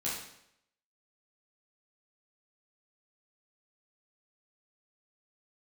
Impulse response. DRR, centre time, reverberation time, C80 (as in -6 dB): -8.0 dB, 54 ms, 0.75 s, 5.5 dB